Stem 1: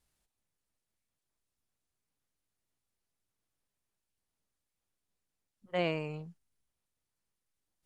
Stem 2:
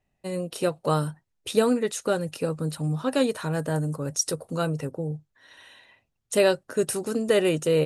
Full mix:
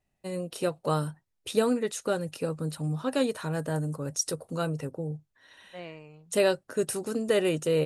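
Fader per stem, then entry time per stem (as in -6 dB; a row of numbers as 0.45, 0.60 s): -10.5, -3.5 dB; 0.00, 0.00 s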